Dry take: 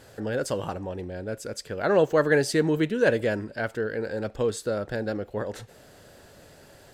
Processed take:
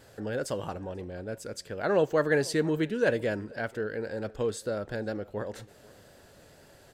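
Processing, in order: echo from a far wall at 84 m, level -23 dB; wow and flutter 23 cents; trim -4 dB

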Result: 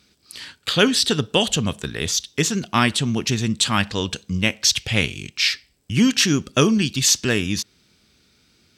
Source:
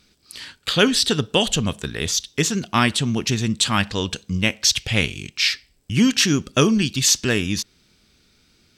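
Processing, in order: high-pass 58 Hz

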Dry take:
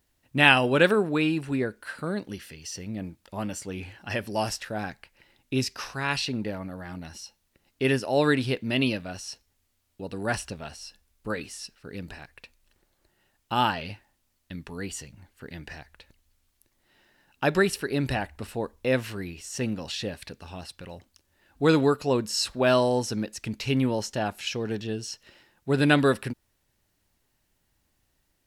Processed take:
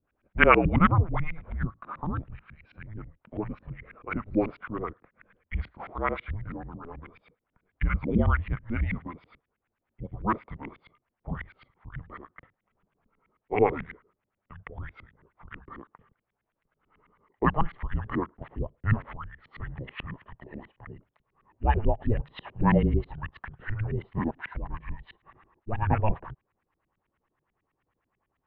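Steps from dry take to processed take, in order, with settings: pitch bend over the whole clip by -5 st starting unshifted; LFO low-pass saw up 9.2 Hz 410–2600 Hz; mistuned SSB -320 Hz 230–3600 Hz; trim -1 dB

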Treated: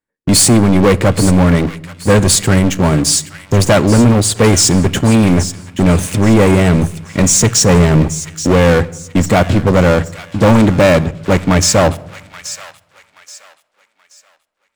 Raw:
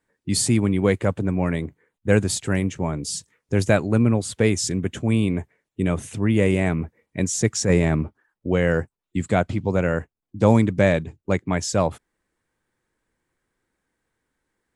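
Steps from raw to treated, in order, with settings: waveshaping leveller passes 5; feedback echo behind a high-pass 828 ms, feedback 32%, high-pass 1.5 kHz, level -12 dB; on a send at -16 dB: reverberation RT60 0.95 s, pre-delay 4 ms; on the sum: trim -1 dB

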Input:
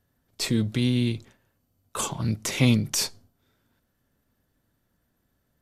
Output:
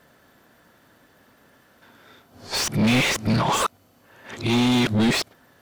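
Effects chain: reverse the whole clip; overdrive pedal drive 36 dB, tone 2.3 kHz, clips at -5.5 dBFS; bit crusher 11-bit; trim -5 dB

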